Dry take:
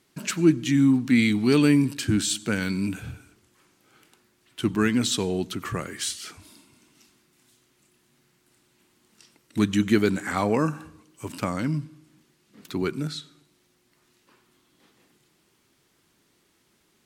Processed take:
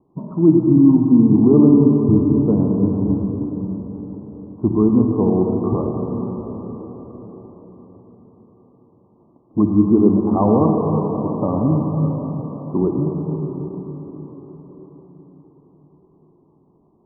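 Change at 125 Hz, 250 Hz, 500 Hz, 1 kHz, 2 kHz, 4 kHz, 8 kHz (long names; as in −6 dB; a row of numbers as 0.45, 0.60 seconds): +9.5 dB, +9.0 dB, +9.5 dB, +6.5 dB, below −35 dB, below −40 dB, below −40 dB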